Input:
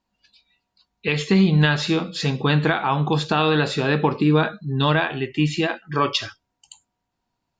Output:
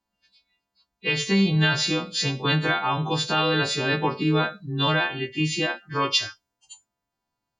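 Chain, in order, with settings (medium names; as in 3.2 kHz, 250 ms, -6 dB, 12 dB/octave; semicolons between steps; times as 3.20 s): partials quantised in pitch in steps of 2 st; tape noise reduction on one side only decoder only; trim -4 dB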